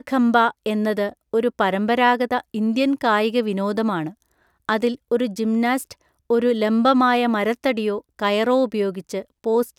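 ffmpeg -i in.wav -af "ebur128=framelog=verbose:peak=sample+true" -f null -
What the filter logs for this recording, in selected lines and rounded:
Integrated loudness:
  I:         -20.6 LUFS
  Threshold: -31.0 LUFS
Loudness range:
  LRA:         2.7 LU
  Threshold: -41.0 LUFS
  LRA low:   -22.7 LUFS
  LRA high:  -20.0 LUFS
Sample peak:
  Peak:       -2.8 dBFS
True peak:
  Peak:       -2.8 dBFS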